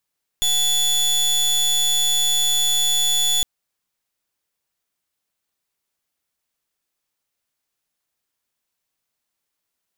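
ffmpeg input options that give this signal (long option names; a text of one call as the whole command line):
ffmpeg -f lavfi -i "aevalsrc='0.119*(2*lt(mod(3450*t,1),0.26)-1)':duration=3.01:sample_rate=44100" out.wav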